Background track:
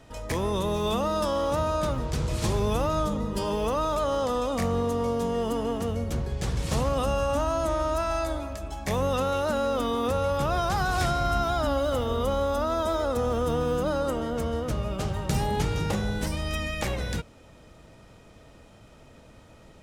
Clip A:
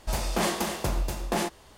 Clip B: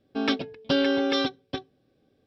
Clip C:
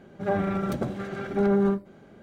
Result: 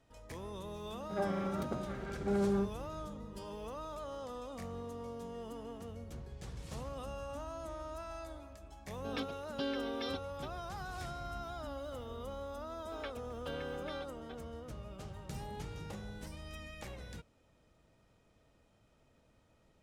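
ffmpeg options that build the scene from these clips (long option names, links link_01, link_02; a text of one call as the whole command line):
ffmpeg -i bed.wav -i cue0.wav -i cue1.wav -i cue2.wav -filter_complex "[2:a]asplit=2[link_01][link_02];[0:a]volume=-17.5dB[link_03];[3:a]highpass=frequency=120:width=0.5412,highpass=frequency=120:width=1.3066[link_04];[link_02]highpass=540,lowpass=2700[link_05];[link_04]atrim=end=2.22,asetpts=PTS-STARTPTS,volume=-9.5dB,afade=type=in:duration=0.004:curve=hsin,afade=type=out:start_time=2.216:duration=0.004:curve=hsin,adelay=900[link_06];[link_01]atrim=end=2.26,asetpts=PTS-STARTPTS,volume=-15dB,afade=type=in:duration=0.004:curve=hsin,afade=type=out:start_time=2.256:duration=0.004:curve=hsin,adelay=8890[link_07];[link_05]atrim=end=2.26,asetpts=PTS-STARTPTS,volume=-16dB,afade=type=in:duration=0.004:curve=hsin,afade=type=out:start_time=2.256:duration=0.004:curve=hsin,adelay=12760[link_08];[link_03][link_06][link_07][link_08]amix=inputs=4:normalize=0" out.wav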